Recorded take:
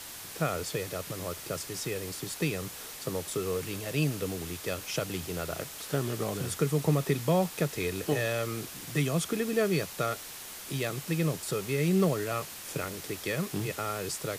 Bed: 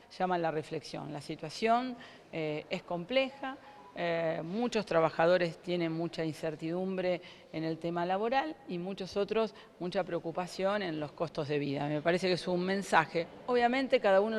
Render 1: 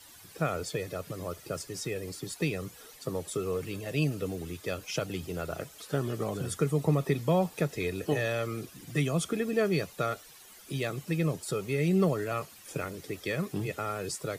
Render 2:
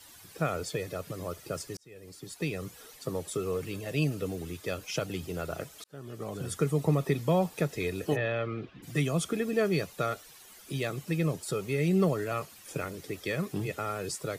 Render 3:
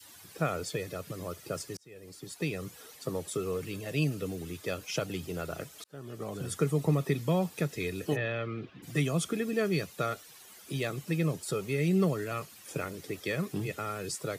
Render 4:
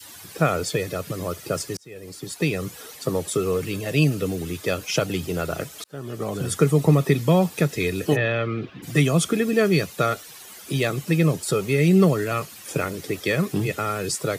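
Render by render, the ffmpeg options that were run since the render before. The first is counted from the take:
ffmpeg -i in.wav -af "afftdn=noise_reduction=13:noise_floor=-43" out.wav
ffmpeg -i in.wav -filter_complex "[0:a]asplit=3[link_01][link_02][link_03];[link_01]afade=type=out:start_time=8.15:duration=0.02[link_04];[link_02]lowpass=frequency=3300:width=0.5412,lowpass=frequency=3300:width=1.3066,afade=type=in:start_time=8.15:duration=0.02,afade=type=out:start_time=8.82:duration=0.02[link_05];[link_03]afade=type=in:start_time=8.82:duration=0.02[link_06];[link_04][link_05][link_06]amix=inputs=3:normalize=0,asplit=3[link_07][link_08][link_09];[link_07]atrim=end=1.77,asetpts=PTS-STARTPTS,afade=type=out:start_time=1.766:duration=0.004:curve=hsin[link_10];[link_08]atrim=start=1.77:end=5.84,asetpts=PTS-STARTPTS,afade=type=in:duration=0.92,afade=type=out:start_time=4.066:duration=0.004:curve=hsin[link_11];[link_09]atrim=start=5.84,asetpts=PTS-STARTPTS,afade=type=in:duration=0.76[link_12];[link_10][link_11][link_12]concat=n=3:v=0:a=1" out.wav
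ffmpeg -i in.wav -af "highpass=80,adynamicequalizer=threshold=0.00708:dfrequency=710:dqfactor=0.89:tfrequency=710:tqfactor=0.89:attack=5:release=100:ratio=0.375:range=3:mode=cutabove:tftype=bell" out.wav
ffmpeg -i in.wav -af "volume=10dB" out.wav

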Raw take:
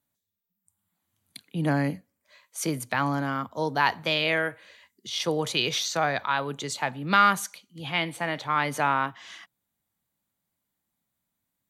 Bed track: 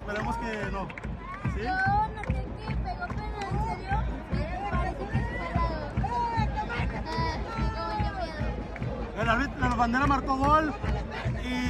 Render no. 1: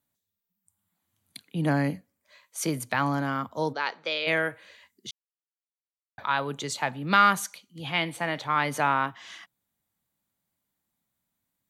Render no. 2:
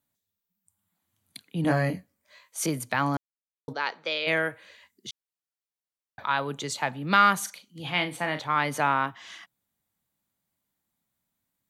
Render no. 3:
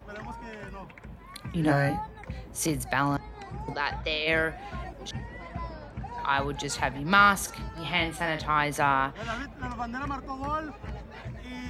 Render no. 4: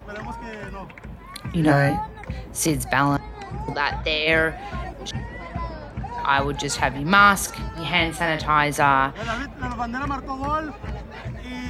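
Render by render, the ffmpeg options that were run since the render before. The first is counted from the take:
ffmpeg -i in.wav -filter_complex "[0:a]asplit=3[link_01][link_02][link_03];[link_01]afade=type=out:start_time=3.72:duration=0.02[link_04];[link_02]highpass=490,equalizer=frequency=500:width_type=q:width=4:gain=4,equalizer=frequency=720:width_type=q:width=4:gain=-9,equalizer=frequency=1000:width_type=q:width=4:gain=-9,equalizer=frequency=1800:width_type=q:width=4:gain=-7,equalizer=frequency=2900:width_type=q:width=4:gain=-6,equalizer=frequency=4300:width_type=q:width=4:gain=-3,lowpass=frequency=5600:width=0.5412,lowpass=frequency=5600:width=1.3066,afade=type=in:start_time=3.72:duration=0.02,afade=type=out:start_time=4.26:duration=0.02[link_05];[link_03]afade=type=in:start_time=4.26:duration=0.02[link_06];[link_04][link_05][link_06]amix=inputs=3:normalize=0,asplit=3[link_07][link_08][link_09];[link_07]atrim=end=5.11,asetpts=PTS-STARTPTS,afade=type=out:start_time=5.106:duration=0.004:curve=hsin[link_10];[link_08]atrim=start=5.11:end=6.18,asetpts=PTS-STARTPTS,volume=0[link_11];[link_09]atrim=start=6.18,asetpts=PTS-STARTPTS,afade=type=in:duration=0.004:curve=hsin[link_12];[link_10][link_11][link_12]concat=n=3:v=0:a=1" out.wav
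ffmpeg -i in.wav -filter_complex "[0:a]asettb=1/sr,asplit=3[link_01][link_02][link_03];[link_01]atrim=end=1.624[link_04];[link_02]atrim=start=1.62:end=2.66,asetpts=PTS-STARTPTS,afade=type=in:duration=0.004:curve=qsin,afade=type=out:start_time=1.036:duration=0.004:curve=qsin,asplit=2[link_05][link_06];[link_06]adelay=23,volume=-3dB[link_07];[link_05][link_07]amix=inputs=2:normalize=0,atrim=end_sample=45864[link_08];[link_03]atrim=start=2.656[link_09];[link_04][link_08]acrossfade=duration=0.004:curve1=hsin:curve2=qsin[link_10];[link_10][link_09]acrossfade=duration=0.004:curve1=qsin:curve2=hsin,asettb=1/sr,asplit=3[link_11][link_12][link_13];[link_11]atrim=end=7.384[link_14];[link_12]atrim=start=7.38:end=8.4,asetpts=PTS-STARTPTS,afade=type=in:duration=0.004:curve=qsin,afade=type=out:start_time=1.016:duration=0.004:curve=qsin,asplit=2[link_15][link_16];[link_16]adelay=39,volume=-9.5dB[link_17];[link_15][link_17]amix=inputs=2:normalize=0,atrim=end_sample=44982[link_18];[link_13]atrim=start=8.396[link_19];[link_14][link_18]acrossfade=duration=0.004:curve1=hsin:curve2=qsin[link_20];[link_20][link_19]acrossfade=duration=0.004:curve1=qsin:curve2=hsin,asplit=3[link_21][link_22][link_23];[link_21]atrim=end=3.17,asetpts=PTS-STARTPTS,afade=type=out:start_time=3.166:duration=0.004:curve=hsin[link_24];[link_22]atrim=start=3.17:end=3.68,asetpts=PTS-STARTPTS,volume=0[link_25];[link_23]atrim=start=3.68,asetpts=PTS-STARTPTS,afade=type=in:duration=0.004:curve=hsin[link_26];[link_24][link_25][link_26]concat=n=3:v=0:a=1" out.wav
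ffmpeg -i in.wav -i bed.wav -filter_complex "[1:a]volume=-9dB[link_01];[0:a][link_01]amix=inputs=2:normalize=0" out.wav
ffmpeg -i in.wav -af "volume=6.5dB,alimiter=limit=-3dB:level=0:latency=1" out.wav

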